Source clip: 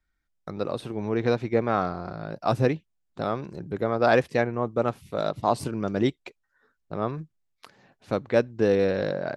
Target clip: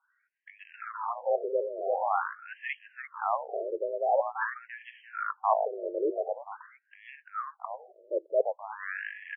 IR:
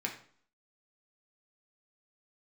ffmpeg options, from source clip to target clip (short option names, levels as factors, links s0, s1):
-filter_complex "[0:a]equalizer=f=960:t=o:w=1.6:g=12.5,asplit=2[s0][s1];[s1]adelay=342,lowpass=f=1100:p=1,volume=0.473,asplit=2[s2][s3];[s3]adelay=342,lowpass=f=1100:p=1,volume=0.33,asplit=2[s4][s5];[s5]adelay=342,lowpass=f=1100:p=1,volume=0.33,asplit=2[s6][s7];[s7]adelay=342,lowpass=f=1100:p=1,volume=0.33[s8];[s2][s4][s6][s8]amix=inputs=4:normalize=0[s9];[s0][s9]amix=inputs=2:normalize=0,afreqshift=52,areverse,acompressor=threshold=0.0631:ratio=8,areverse,lowpass=3700,highshelf=f=2100:g=9.5,afftfilt=real='re*between(b*sr/1024,430*pow(2400/430,0.5+0.5*sin(2*PI*0.46*pts/sr))/1.41,430*pow(2400/430,0.5+0.5*sin(2*PI*0.46*pts/sr))*1.41)':imag='im*between(b*sr/1024,430*pow(2400/430,0.5+0.5*sin(2*PI*0.46*pts/sr))/1.41,430*pow(2400/430,0.5+0.5*sin(2*PI*0.46*pts/sr))*1.41)':win_size=1024:overlap=0.75,volume=1.19"